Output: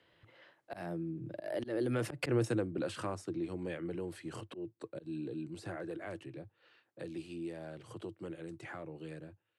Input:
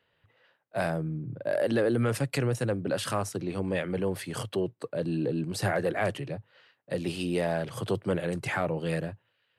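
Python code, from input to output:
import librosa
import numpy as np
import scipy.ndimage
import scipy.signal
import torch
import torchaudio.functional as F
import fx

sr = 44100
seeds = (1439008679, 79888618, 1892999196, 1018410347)

y = fx.doppler_pass(x, sr, speed_mps=16, closest_m=1.5, pass_at_s=2.34)
y = scipy.signal.sosfilt(scipy.signal.butter(2, 11000.0, 'lowpass', fs=sr, output='sos'), y)
y = fx.peak_eq(y, sr, hz=330.0, db=12.5, octaves=0.23)
y = fx.auto_swell(y, sr, attack_ms=194.0)
y = fx.band_squash(y, sr, depth_pct=70)
y = F.gain(torch.from_numpy(y), 10.0).numpy()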